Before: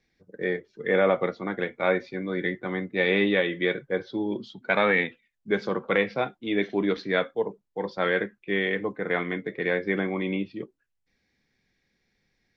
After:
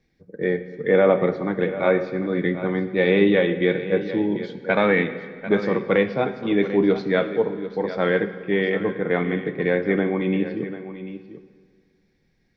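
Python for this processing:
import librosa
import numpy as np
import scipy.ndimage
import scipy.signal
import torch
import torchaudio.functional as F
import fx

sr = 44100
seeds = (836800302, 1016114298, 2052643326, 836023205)

y = fx.tilt_shelf(x, sr, db=4.5, hz=680.0)
y = y + 10.0 ** (-13.0 / 20.0) * np.pad(y, (int(743 * sr / 1000.0), 0))[:len(y)]
y = fx.rev_fdn(y, sr, rt60_s=1.9, lf_ratio=1.0, hf_ratio=0.8, size_ms=37.0, drr_db=10.0)
y = F.gain(torch.from_numpy(y), 3.5).numpy()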